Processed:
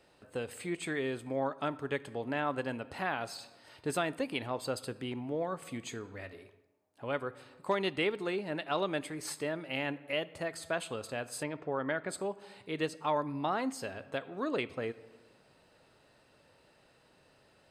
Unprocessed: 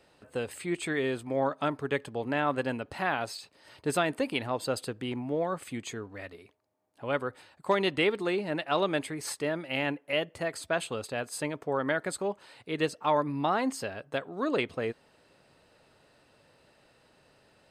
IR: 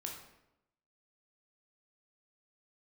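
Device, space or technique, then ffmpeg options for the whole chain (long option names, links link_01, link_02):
compressed reverb return: -filter_complex "[0:a]asplit=2[link_01][link_02];[1:a]atrim=start_sample=2205[link_03];[link_02][link_03]afir=irnorm=-1:irlink=0,acompressor=threshold=-40dB:ratio=4,volume=-1.5dB[link_04];[link_01][link_04]amix=inputs=2:normalize=0,asettb=1/sr,asplit=3[link_05][link_06][link_07];[link_05]atrim=end=11.434[link_08];[link_06]atrim=start=11.43:end=12.09,asetpts=PTS-STARTPTS,afade=type=in:duration=0.004:curve=qsin,afade=type=out:start_time=0.656:duration=0.004:curve=qsin,lowpass=3700[link_09];[link_07]atrim=start=12.086[link_10];[link_08][link_09]acrossfade=duration=0.004:curve1=hsin:curve2=qsin[link_11];[link_11][link_10]acrossfade=duration=0.004:curve1=qsin:curve2=hsin,volume=-6dB"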